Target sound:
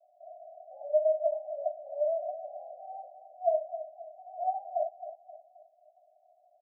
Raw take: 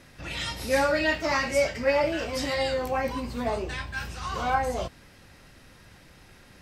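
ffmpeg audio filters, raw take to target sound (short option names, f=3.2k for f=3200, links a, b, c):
-filter_complex "[0:a]asuperpass=centerf=670:order=12:qfactor=4.6,asplit=2[a][b];[b]aecho=0:1:265|530|795|1060:0.251|0.103|0.0422|0.0173[c];[a][c]amix=inputs=2:normalize=0,volume=5dB"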